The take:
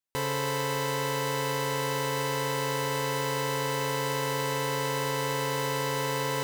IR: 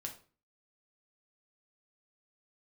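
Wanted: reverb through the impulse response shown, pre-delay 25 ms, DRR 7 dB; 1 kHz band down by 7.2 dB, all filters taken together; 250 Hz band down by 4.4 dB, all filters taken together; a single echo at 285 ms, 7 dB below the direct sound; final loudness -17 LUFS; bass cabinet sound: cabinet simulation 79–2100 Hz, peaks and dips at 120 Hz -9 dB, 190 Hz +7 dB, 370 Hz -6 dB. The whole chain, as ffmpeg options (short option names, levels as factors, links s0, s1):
-filter_complex "[0:a]equalizer=f=250:t=o:g=-4,equalizer=f=1000:t=o:g=-7.5,aecho=1:1:285:0.447,asplit=2[s0][s1];[1:a]atrim=start_sample=2205,adelay=25[s2];[s1][s2]afir=irnorm=-1:irlink=0,volume=0.562[s3];[s0][s3]amix=inputs=2:normalize=0,highpass=f=79:w=0.5412,highpass=f=79:w=1.3066,equalizer=f=120:t=q:w=4:g=-9,equalizer=f=190:t=q:w=4:g=7,equalizer=f=370:t=q:w=4:g=-6,lowpass=f=2100:w=0.5412,lowpass=f=2100:w=1.3066,volume=6.31"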